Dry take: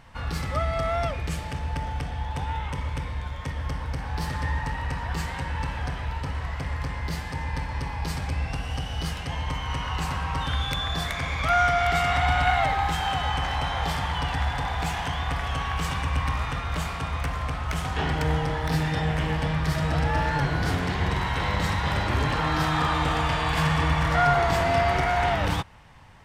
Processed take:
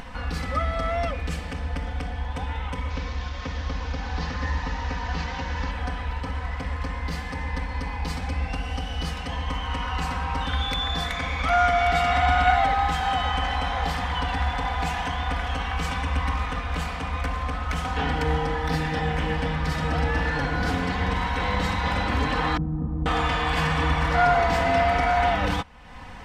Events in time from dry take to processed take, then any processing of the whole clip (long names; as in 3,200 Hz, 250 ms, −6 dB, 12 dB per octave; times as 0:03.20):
0:02.90–0:05.71: linear delta modulator 32 kbit/s, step −33.5 dBFS
0:22.57–0:23.06: low-pass with resonance 220 Hz, resonance Q 1.6
whole clip: high-shelf EQ 8,000 Hz −10 dB; comb filter 4 ms, depth 68%; upward compression, threshold −29 dBFS